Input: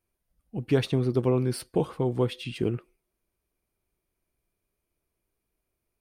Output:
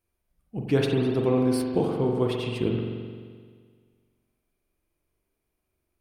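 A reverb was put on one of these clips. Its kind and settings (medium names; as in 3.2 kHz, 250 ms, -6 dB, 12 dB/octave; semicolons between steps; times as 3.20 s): spring tank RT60 1.8 s, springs 43 ms, chirp 45 ms, DRR 0.5 dB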